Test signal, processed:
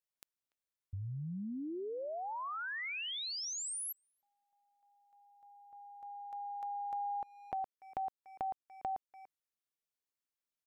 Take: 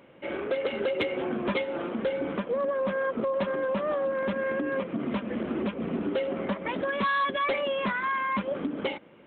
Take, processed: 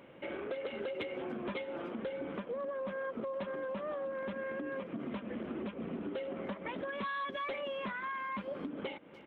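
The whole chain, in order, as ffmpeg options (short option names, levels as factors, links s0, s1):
-filter_complex "[0:a]asplit=2[s0][s1];[s1]adelay=290,highpass=300,lowpass=3400,asoftclip=type=hard:threshold=0.0422,volume=0.0708[s2];[s0][s2]amix=inputs=2:normalize=0,acompressor=threshold=0.01:ratio=2.5,volume=0.891"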